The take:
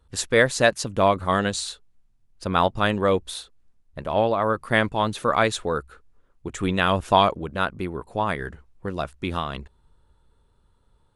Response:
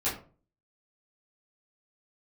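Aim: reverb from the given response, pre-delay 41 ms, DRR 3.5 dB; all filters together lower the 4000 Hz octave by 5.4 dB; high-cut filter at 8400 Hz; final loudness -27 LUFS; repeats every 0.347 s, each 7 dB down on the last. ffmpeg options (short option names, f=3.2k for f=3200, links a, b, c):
-filter_complex "[0:a]lowpass=8.4k,equalizer=f=4k:t=o:g=-6.5,aecho=1:1:347|694|1041|1388|1735:0.447|0.201|0.0905|0.0407|0.0183,asplit=2[a][b];[1:a]atrim=start_sample=2205,adelay=41[c];[b][c]afir=irnorm=-1:irlink=0,volume=-11.5dB[d];[a][d]amix=inputs=2:normalize=0,volume=-5.5dB"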